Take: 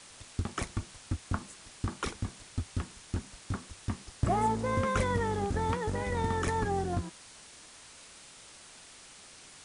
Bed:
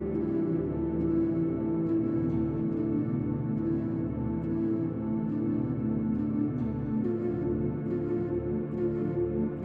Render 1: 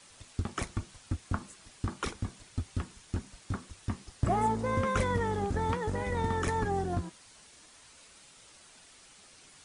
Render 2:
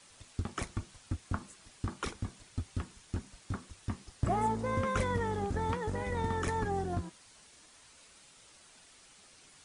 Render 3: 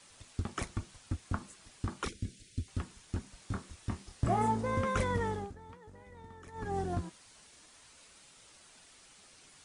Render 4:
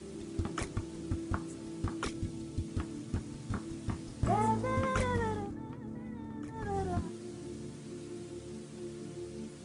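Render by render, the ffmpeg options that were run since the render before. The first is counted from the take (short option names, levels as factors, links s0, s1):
-af "afftdn=nr=6:nf=-53"
-af "volume=0.75"
-filter_complex "[0:a]asettb=1/sr,asplit=3[s0][s1][s2];[s0]atrim=end=2.084[s3];[s1]atrim=start=2.08:end=2.68,asetpts=PTS-STARTPTS,afade=t=in:d=0.004:c=qsin,afade=t=out:st=0.596:d=0.004:c=qsin,asuperstop=centerf=950:order=4:qfactor=0.56[s4];[s2]atrim=start=2.676[s5];[s3][s4]acrossfade=d=0.004:c1=hsin:c2=qsin[s6];[s6][s5]acrossfade=d=0.004:c1=qsin:c2=hsin,asettb=1/sr,asplit=3[s7][s8][s9];[s7]atrim=end=3.364[s10];[s8]atrim=start=3.36:end=4.61,asetpts=PTS-STARTPTS,afade=t=in:d=0.004:c=qsin,afade=t=out:st=1.246:d=0.004:c=qsin,asplit=2[s11][s12];[s12]adelay=26,volume=0.473[s13];[s11][s13]amix=inputs=2:normalize=0,atrim=end_sample=55125[s14];[s9]atrim=start=4.606[s15];[s10][s14]acrossfade=d=0.004:c1=hsin:c2=qsin[s16];[s16][s15]acrossfade=d=0.004:c1=qsin:c2=hsin,asplit=3[s17][s18][s19];[s17]atrim=end=5.55,asetpts=PTS-STARTPTS,afade=t=out:st=5.28:d=0.27:silence=0.11885[s20];[s18]atrim=start=5.55:end=6.52,asetpts=PTS-STARTPTS,volume=0.119[s21];[s19]atrim=start=6.52,asetpts=PTS-STARTPTS,afade=t=in:d=0.27:silence=0.11885[s22];[s20][s21][s22]concat=n=3:v=0:a=1"
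-filter_complex "[1:a]volume=0.2[s0];[0:a][s0]amix=inputs=2:normalize=0"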